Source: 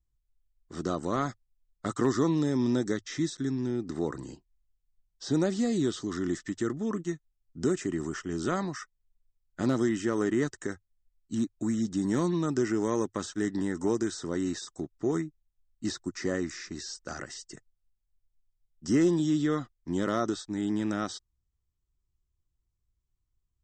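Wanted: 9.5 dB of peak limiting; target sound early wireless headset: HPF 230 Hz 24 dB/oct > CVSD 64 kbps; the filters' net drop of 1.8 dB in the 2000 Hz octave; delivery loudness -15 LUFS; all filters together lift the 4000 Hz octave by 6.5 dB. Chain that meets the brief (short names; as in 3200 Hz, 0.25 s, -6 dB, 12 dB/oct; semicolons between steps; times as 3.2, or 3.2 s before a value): bell 2000 Hz -4 dB; bell 4000 Hz +9 dB; limiter -24 dBFS; HPF 230 Hz 24 dB/oct; CVSD 64 kbps; gain +20.5 dB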